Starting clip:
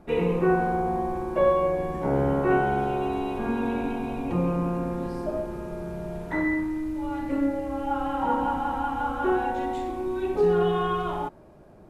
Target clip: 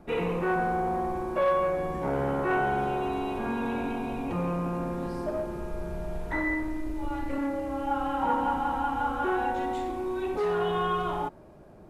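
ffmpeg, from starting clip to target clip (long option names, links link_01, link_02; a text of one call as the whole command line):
ffmpeg -i in.wav -filter_complex "[0:a]asplit=3[link_01][link_02][link_03];[link_01]afade=type=out:start_time=5.6:duration=0.02[link_04];[link_02]asubboost=boost=4.5:cutoff=66,afade=type=in:start_time=5.6:duration=0.02,afade=type=out:start_time=7.36:duration=0.02[link_05];[link_03]afade=type=in:start_time=7.36:duration=0.02[link_06];[link_04][link_05][link_06]amix=inputs=3:normalize=0,acrossover=split=700[link_07][link_08];[link_07]asoftclip=type=tanh:threshold=-27.5dB[link_09];[link_09][link_08]amix=inputs=2:normalize=0" out.wav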